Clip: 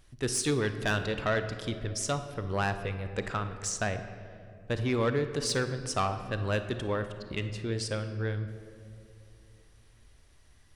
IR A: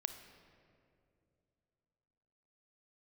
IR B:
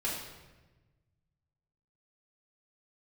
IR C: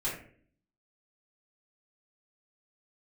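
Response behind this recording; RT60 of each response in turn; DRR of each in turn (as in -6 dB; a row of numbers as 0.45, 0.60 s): A; 2.6, 1.2, 0.50 s; 9.0, -5.5, -8.5 dB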